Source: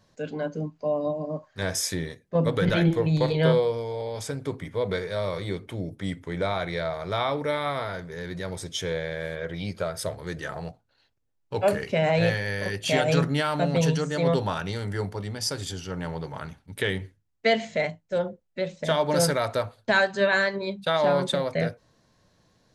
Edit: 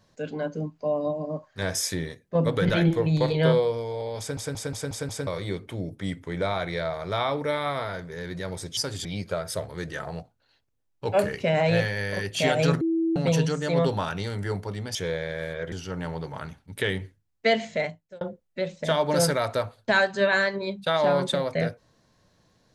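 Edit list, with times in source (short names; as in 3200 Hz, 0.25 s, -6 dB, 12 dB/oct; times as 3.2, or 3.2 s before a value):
4.19 stutter in place 0.18 s, 6 plays
8.77–9.54 swap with 15.44–15.72
13.3–13.65 bleep 328 Hz -21 dBFS
17.6–18.21 fade out equal-power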